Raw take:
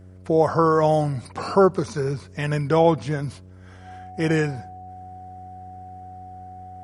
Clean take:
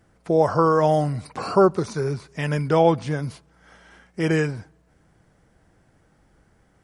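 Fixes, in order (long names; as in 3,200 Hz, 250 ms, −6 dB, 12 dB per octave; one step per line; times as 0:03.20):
hum removal 92.5 Hz, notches 7
notch filter 740 Hz, Q 30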